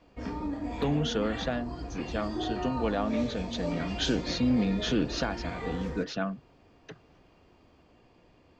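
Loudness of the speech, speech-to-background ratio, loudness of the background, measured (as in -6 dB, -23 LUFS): -31.5 LUFS, 5.0 dB, -36.5 LUFS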